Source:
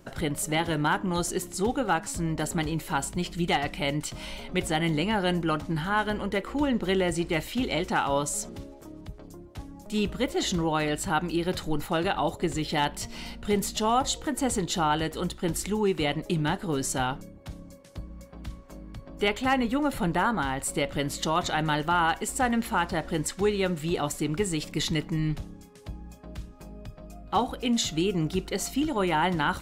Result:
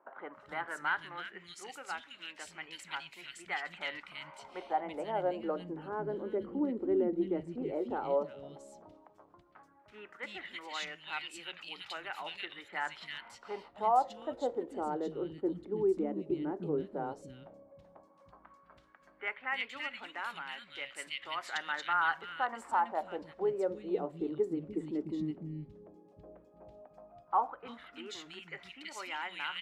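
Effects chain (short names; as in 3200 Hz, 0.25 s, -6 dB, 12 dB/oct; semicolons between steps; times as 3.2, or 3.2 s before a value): LFO band-pass sine 0.11 Hz 340–2600 Hz; three bands offset in time mids, lows, highs 0.3/0.33 s, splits 230/2200 Hz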